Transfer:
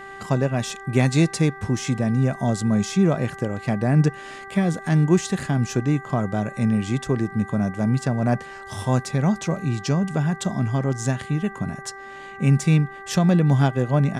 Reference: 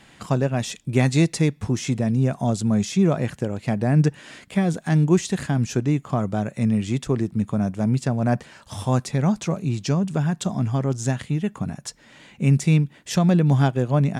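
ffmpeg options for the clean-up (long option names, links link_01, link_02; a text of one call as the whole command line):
ffmpeg -i in.wav -af "bandreject=frequency=391.8:width_type=h:width=4,bandreject=frequency=783.6:width_type=h:width=4,bandreject=frequency=1175.4:width_type=h:width=4,bandreject=frequency=1567.2:width_type=h:width=4,bandreject=frequency=1959:width_type=h:width=4,agate=range=-21dB:threshold=-30dB" out.wav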